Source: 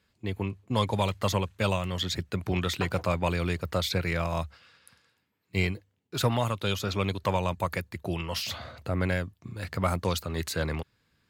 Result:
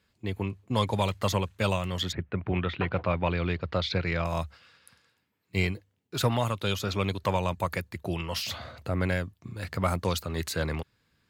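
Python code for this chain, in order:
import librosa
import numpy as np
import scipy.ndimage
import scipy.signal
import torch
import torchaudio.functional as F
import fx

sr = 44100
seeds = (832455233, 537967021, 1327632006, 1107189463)

y = fx.lowpass(x, sr, hz=fx.line((2.11, 2300.0), (4.24, 5500.0)), slope=24, at=(2.11, 4.24), fade=0.02)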